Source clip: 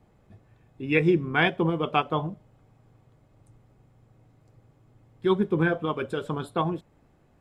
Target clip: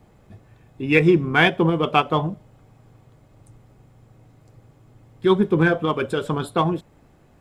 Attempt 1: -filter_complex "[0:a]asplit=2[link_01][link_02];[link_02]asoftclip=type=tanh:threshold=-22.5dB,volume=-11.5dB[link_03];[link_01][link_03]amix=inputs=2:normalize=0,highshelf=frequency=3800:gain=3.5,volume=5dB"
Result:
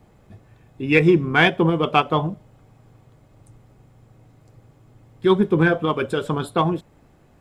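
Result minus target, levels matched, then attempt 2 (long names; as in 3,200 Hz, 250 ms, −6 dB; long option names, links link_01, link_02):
soft clipping: distortion −5 dB
-filter_complex "[0:a]asplit=2[link_01][link_02];[link_02]asoftclip=type=tanh:threshold=-29.5dB,volume=-11.5dB[link_03];[link_01][link_03]amix=inputs=2:normalize=0,highshelf=frequency=3800:gain=3.5,volume=5dB"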